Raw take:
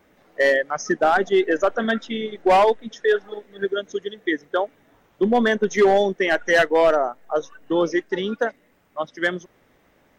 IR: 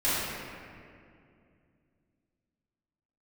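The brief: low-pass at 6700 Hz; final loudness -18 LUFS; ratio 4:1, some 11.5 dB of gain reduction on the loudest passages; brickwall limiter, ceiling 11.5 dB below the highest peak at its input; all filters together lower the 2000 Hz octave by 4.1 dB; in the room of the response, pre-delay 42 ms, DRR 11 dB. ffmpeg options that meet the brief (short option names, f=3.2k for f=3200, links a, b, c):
-filter_complex "[0:a]lowpass=6.7k,equalizer=f=2k:t=o:g=-5,acompressor=threshold=-27dB:ratio=4,alimiter=level_in=4dB:limit=-24dB:level=0:latency=1,volume=-4dB,asplit=2[a][b];[1:a]atrim=start_sample=2205,adelay=42[c];[b][c]afir=irnorm=-1:irlink=0,volume=-24.5dB[d];[a][d]amix=inputs=2:normalize=0,volume=19dB"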